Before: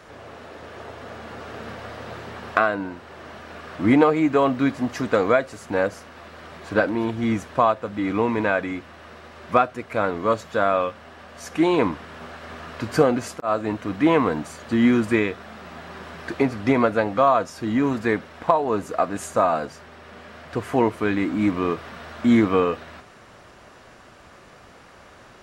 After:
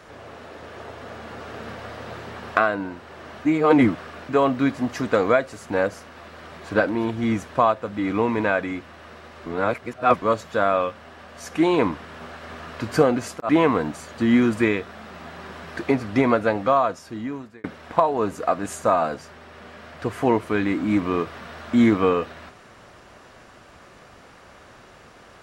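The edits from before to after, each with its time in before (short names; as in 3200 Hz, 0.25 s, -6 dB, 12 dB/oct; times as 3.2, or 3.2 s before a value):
3.45–4.29 reverse
9.46–10.22 reverse
13.49–14 cut
17.11–18.15 fade out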